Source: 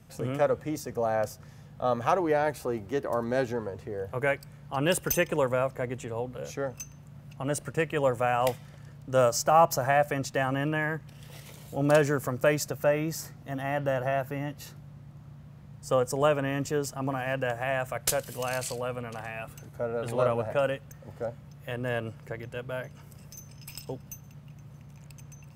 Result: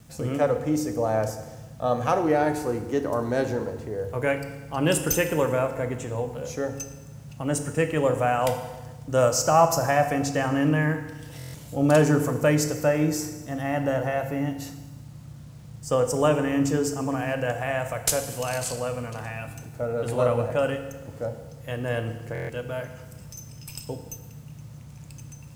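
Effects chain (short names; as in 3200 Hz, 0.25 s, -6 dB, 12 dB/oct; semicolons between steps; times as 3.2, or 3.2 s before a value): low shelf 430 Hz +5 dB; reverb RT60 1.2 s, pre-delay 3 ms, DRR 6 dB; bit-crush 10-bit; bell 7200 Hz +5 dB 1.3 oct; stuck buffer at 11.38/22.33, samples 1024, times 6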